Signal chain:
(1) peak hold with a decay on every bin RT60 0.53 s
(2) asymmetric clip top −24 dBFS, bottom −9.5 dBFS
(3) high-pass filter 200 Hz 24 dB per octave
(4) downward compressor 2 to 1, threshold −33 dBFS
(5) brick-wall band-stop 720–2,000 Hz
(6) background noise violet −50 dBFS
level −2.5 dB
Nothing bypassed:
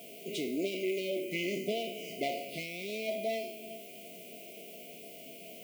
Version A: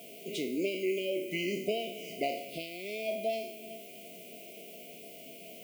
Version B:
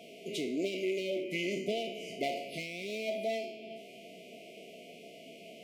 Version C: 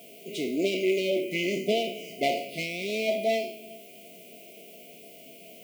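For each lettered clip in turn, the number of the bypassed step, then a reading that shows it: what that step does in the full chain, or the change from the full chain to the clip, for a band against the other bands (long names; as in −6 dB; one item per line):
2, distortion level −8 dB
6, 8 kHz band −2.5 dB
4, average gain reduction 3.5 dB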